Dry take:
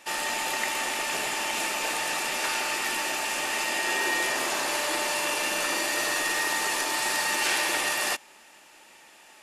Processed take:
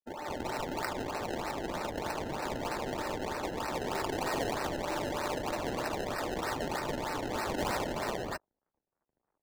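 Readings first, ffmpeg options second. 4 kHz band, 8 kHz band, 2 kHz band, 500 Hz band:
-13.5 dB, -17.5 dB, -13.5 dB, -0.5 dB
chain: -filter_complex "[0:a]acrossover=split=1400|5100[a][b][c];[c]adelay=130[d];[b]adelay=210[e];[a][e][d]amix=inputs=3:normalize=0,aresample=16000,aeval=exprs='sgn(val(0))*max(abs(val(0))-0.00282,0)':c=same,aresample=44100,acrusher=samples=26:mix=1:aa=0.000001:lfo=1:lforange=26:lforate=3.2,bass=f=250:g=-4,treble=f=4k:g=1,acrossover=split=140|1900[f][g][h];[h]aeval=exprs='sgn(val(0))*max(abs(val(0))-0.00211,0)':c=same[i];[f][g][i]amix=inputs=3:normalize=0,afftdn=nr=12:nf=-46,volume=-3dB"

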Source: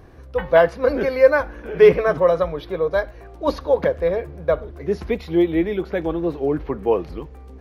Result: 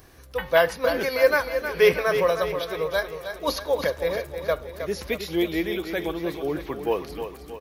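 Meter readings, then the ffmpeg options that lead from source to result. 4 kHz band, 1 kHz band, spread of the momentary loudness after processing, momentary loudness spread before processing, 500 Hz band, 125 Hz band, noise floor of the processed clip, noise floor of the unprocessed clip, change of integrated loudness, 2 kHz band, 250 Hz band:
+6.5 dB, -3.0 dB, 11 LU, 12 LU, -5.5 dB, -7.5 dB, -45 dBFS, -41 dBFS, -5.0 dB, +0.5 dB, -6.5 dB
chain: -af "aecho=1:1:315|630|945|1260|1575|1890:0.355|0.181|0.0923|0.0471|0.024|0.0122,crystalizer=i=9:c=0,volume=-8dB"

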